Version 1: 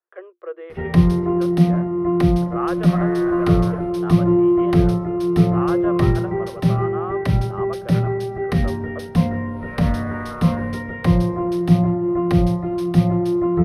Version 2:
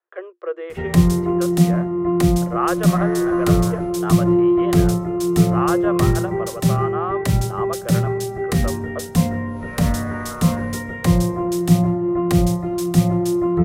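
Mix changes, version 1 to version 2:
speech +5.0 dB
master: remove moving average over 6 samples

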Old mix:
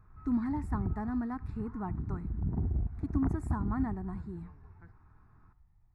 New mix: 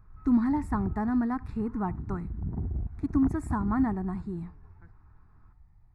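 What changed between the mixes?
speech +7.0 dB
background: send −6.0 dB

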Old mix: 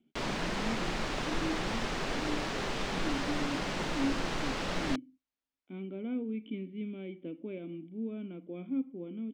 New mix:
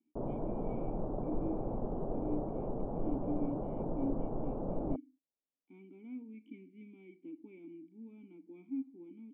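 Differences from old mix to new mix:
speech: add formant filter u
background: add inverse Chebyshev low-pass filter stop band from 1,900 Hz, stop band 50 dB

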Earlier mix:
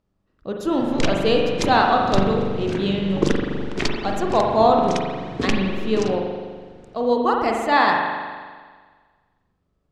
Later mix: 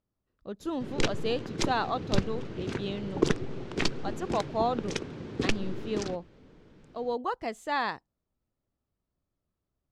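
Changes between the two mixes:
speech −6.0 dB
reverb: off

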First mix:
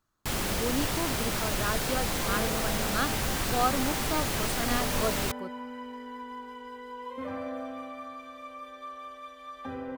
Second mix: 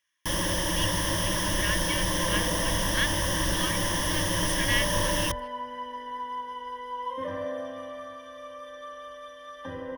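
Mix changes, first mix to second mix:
speech: add high-pass with resonance 2,300 Hz, resonance Q 10
master: add EQ curve with evenly spaced ripples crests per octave 1.2, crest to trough 16 dB

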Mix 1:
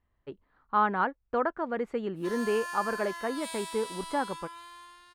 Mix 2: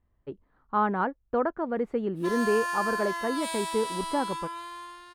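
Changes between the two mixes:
background +9.0 dB
master: add tilt shelving filter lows +5 dB, about 890 Hz

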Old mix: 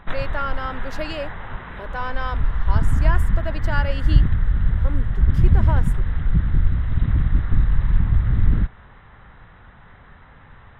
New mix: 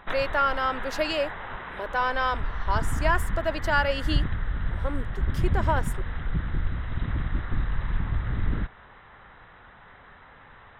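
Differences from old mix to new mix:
speech +3.5 dB
master: add bass and treble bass −10 dB, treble +2 dB

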